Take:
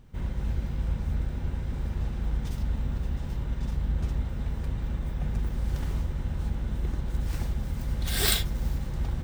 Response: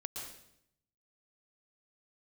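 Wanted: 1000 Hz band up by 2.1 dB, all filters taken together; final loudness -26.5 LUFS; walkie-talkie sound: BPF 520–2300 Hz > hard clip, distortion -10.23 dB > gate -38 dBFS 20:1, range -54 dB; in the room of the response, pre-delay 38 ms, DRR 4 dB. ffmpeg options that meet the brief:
-filter_complex "[0:a]equalizer=f=1k:t=o:g=3.5,asplit=2[a][b];[1:a]atrim=start_sample=2205,adelay=38[c];[b][c]afir=irnorm=-1:irlink=0,volume=-3dB[d];[a][d]amix=inputs=2:normalize=0,highpass=520,lowpass=2.3k,asoftclip=type=hard:threshold=-33.5dB,agate=range=-54dB:threshold=-38dB:ratio=20,volume=11.5dB"

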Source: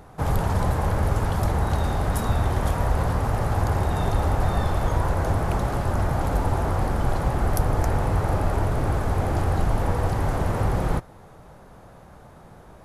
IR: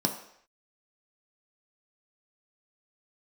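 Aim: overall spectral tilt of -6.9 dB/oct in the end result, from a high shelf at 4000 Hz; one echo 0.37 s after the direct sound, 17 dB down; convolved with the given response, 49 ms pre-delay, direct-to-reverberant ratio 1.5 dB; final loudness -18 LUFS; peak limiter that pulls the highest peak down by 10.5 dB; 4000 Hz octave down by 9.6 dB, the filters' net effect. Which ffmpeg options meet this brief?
-filter_complex "[0:a]highshelf=f=4k:g=-8.5,equalizer=f=4k:t=o:g=-7.5,alimiter=limit=-20dB:level=0:latency=1,aecho=1:1:370:0.141,asplit=2[a][b];[1:a]atrim=start_sample=2205,adelay=49[c];[b][c]afir=irnorm=-1:irlink=0,volume=-9.5dB[d];[a][d]amix=inputs=2:normalize=0,volume=7.5dB"

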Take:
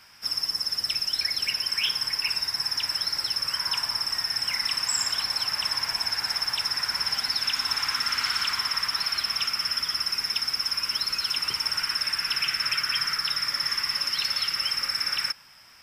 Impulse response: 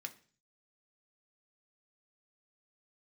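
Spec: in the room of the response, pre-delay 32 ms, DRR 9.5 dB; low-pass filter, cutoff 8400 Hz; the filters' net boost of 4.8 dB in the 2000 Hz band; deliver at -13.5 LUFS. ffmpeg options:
-filter_complex "[0:a]lowpass=8.4k,equalizer=f=2k:t=o:g=6,asplit=2[a][b];[1:a]atrim=start_sample=2205,adelay=32[c];[b][c]afir=irnorm=-1:irlink=0,volume=-7dB[d];[a][d]amix=inputs=2:normalize=0,volume=10dB"

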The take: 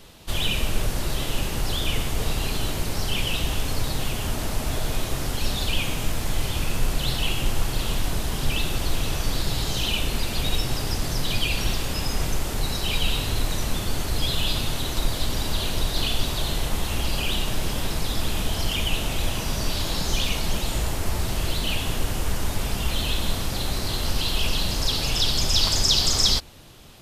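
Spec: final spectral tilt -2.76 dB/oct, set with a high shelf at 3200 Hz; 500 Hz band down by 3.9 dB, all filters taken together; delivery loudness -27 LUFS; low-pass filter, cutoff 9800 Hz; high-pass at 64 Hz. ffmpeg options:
-af "highpass=64,lowpass=9.8k,equalizer=f=500:t=o:g=-5.5,highshelf=f=3.2k:g=8,volume=-4.5dB"

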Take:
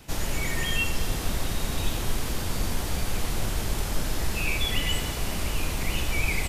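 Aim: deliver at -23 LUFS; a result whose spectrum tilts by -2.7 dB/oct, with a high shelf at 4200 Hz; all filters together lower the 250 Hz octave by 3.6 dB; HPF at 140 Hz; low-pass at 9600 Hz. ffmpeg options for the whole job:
-af "highpass=140,lowpass=9.6k,equalizer=f=250:t=o:g=-4,highshelf=f=4.2k:g=6,volume=6dB"

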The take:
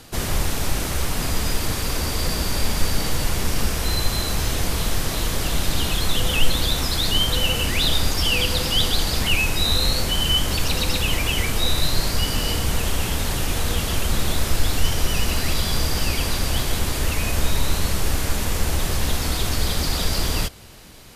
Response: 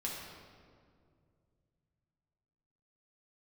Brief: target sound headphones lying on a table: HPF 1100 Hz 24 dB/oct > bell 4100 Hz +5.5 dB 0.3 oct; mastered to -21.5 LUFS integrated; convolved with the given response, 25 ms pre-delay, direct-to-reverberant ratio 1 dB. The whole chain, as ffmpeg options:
-filter_complex "[0:a]asplit=2[a][b];[1:a]atrim=start_sample=2205,adelay=25[c];[b][c]afir=irnorm=-1:irlink=0,volume=-3dB[d];[a][d]amix=inputs=2:normalize=0,highpass=f=1.1k:w=0.5412,highpass=f=1.1k:w=1.3066,equalizer=f=4.1k:t=o:w=0.3:g=5.5,volume=-1dB"

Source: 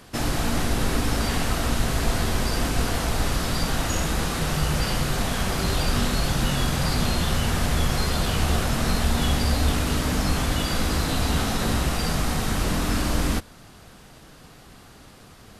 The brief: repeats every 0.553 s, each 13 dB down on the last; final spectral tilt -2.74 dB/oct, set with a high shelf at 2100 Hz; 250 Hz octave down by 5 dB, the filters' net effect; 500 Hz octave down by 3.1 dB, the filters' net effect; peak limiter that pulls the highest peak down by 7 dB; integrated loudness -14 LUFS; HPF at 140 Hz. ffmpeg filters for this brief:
-af "highpass=140,equalizer=f=250:t=o:g=-5,equalizer=f=500:t=o:g=-3,highshelf=f=2.1k:g=5.5,alimiter=limit=-19dB:level=0:latency=1,aecho=1:1:553|1106|1659:0.224|0.0493|0.0108,volume=12.5dB"

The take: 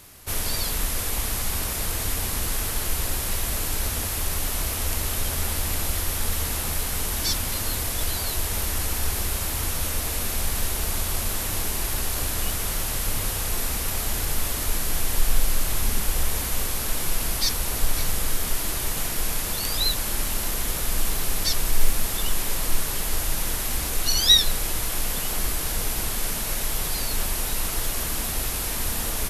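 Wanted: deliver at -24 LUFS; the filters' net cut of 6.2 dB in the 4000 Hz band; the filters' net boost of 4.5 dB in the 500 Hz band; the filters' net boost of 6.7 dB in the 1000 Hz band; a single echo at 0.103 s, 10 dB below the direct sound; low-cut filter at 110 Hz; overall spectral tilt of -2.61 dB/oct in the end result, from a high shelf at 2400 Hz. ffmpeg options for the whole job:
-af "highpass=110,equalizer=f=500:t=o:g=3.5,equalizer=f=1k:t=o:g=8.5,highshelf=f=2.4k:g=-5.5,equalizer=f=4k:t=o:g=-3,aecho=1:1:103:0.316,volume=4.5dB"

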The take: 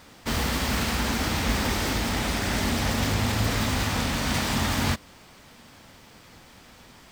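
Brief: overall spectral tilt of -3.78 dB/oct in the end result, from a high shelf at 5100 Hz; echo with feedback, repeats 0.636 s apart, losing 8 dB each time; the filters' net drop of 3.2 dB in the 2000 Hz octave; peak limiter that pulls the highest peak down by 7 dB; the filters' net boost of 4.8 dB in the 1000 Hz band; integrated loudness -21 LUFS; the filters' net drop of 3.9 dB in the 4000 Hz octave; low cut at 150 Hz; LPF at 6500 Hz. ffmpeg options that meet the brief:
-af "highpass=150,lowpass=6.5k,equalizer=f=1k:t=o:g=7.5,equalizer=f=2k:t=o:g=-6,equalizer=f=4k:t=o:g=-6,highshelf=f=5.1k:g=6.5,alimiter=limit=-21dB:level=0:latency=1,aecho=1:1:636|1272|1908|2544|3180:0.398|0.159|0.0637|0.0255|0.0102,volume=9dB"

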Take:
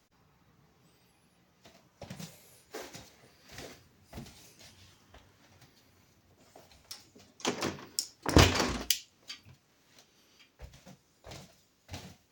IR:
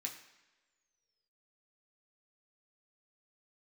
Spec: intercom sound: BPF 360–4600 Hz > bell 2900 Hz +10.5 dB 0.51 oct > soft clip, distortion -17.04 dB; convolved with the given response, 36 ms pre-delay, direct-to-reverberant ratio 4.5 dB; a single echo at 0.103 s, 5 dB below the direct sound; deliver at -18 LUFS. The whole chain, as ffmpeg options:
-filter_complex "[0:a]aecho=1:1:103:0.562,asplit=2[a][b];[1:a]atrim=start_sample=2205,adelay=36[c];[b][c]afir=irnorm=-1:irlink=0,volume=-3dB[d];[a][d]amix=inputs=2:normalize=0,highpass=360,lowpass=4.6k,equalizer=f=2.9k:t=o:w=0.51:g=10.5,asoftclip=threshold=-12dB,volume=10.5dB"

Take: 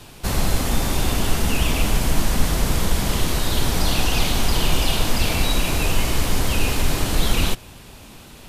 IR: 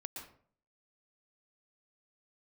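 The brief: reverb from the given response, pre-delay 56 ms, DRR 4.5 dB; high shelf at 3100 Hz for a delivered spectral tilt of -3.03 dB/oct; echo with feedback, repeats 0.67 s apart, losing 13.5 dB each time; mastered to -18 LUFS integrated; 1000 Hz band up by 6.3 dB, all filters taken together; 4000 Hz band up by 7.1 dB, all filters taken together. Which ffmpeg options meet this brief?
-filter_complex "[0:a]equalizer=f=1k:t=o:g=7,highshelf=f=3.1k:g=5.5,equalizer=f=4k:t=o:g=4.5,aecho=1:1:670|1340:0.211|0.0444,asplit=2[a][b];[1:a]atrim=start_sample=2205,adelay=56[c];[b][c]afir=irnorm=-1:irlink=0,volume=-2dB[d];[a][d]amix=inputs=2:normalize=0,volume=-1.5dB"

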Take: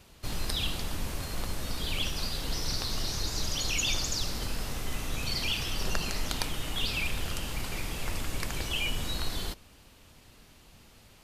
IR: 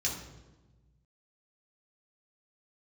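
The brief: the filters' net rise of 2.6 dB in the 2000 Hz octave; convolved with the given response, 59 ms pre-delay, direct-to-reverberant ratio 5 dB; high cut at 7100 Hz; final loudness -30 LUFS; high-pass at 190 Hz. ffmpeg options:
-filter_complex "[0:a]highpass=190,lowpass=7.1k,equalizer=f=2k:t=o:g=3.5,asplit=2[a][b];[1:a]atrim=start_sample=2205,adelay=59[c];[b][c]afir=irnorm=-1:irlink=0,volume=-10dB[d];[a][d]amix=inputs=2:normalize=0,volume=1.5dB"

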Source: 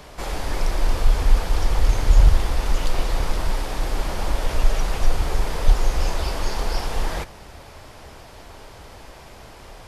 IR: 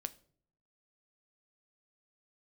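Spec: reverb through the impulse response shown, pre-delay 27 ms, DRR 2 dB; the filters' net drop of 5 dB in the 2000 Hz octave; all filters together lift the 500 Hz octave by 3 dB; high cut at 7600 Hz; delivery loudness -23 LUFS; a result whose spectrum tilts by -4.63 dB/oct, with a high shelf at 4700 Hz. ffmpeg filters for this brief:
-filter_complex "[0:a]lowpass=7.6k,equalizer=f=500:t=o:g=4,equalizer=f=2k:t=o:g=-8.5,highshelf=f=4.7k:g=9,asplit=2[a][b];[1:a]atrim=start_sample=2205,adelay=27[c];[b][c]afir=irnorm=-1:irlink=0,volume=0dB[d];[a][d]amix=inputs=2:normalize=0,volume=-1dB"

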